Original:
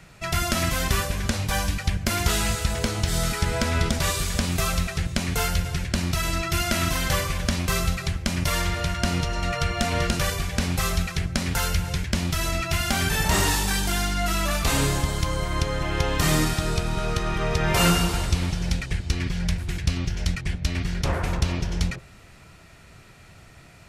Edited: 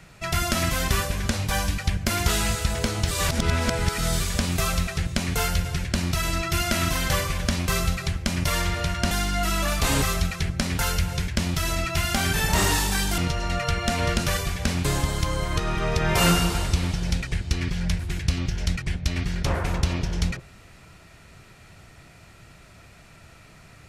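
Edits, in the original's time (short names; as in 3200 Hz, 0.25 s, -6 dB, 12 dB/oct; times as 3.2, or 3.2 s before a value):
3.11–4.2 reverse
9.11–10.78 swap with 13.94–14.85
15.57–17.16 cut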